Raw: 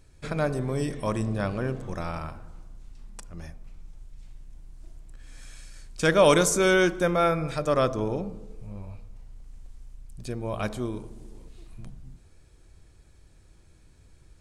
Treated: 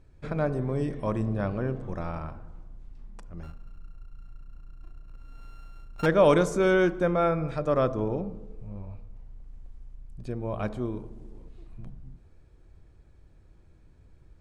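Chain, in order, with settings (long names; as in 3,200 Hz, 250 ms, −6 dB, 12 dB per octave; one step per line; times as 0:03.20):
0:03.43–0:06.06: samples sorted by size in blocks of 32 samples
low-pass filter 1,200 Hz 6 dB per octave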